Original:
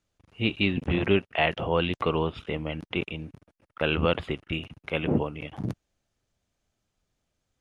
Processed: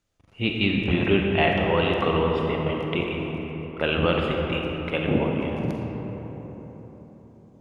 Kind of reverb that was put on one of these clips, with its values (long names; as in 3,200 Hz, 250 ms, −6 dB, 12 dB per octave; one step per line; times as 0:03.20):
comb and all-pass reverb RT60 4.5 s, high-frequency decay 0.4×, pre-delay 5 ms, DRR 0 dB
level +1 dB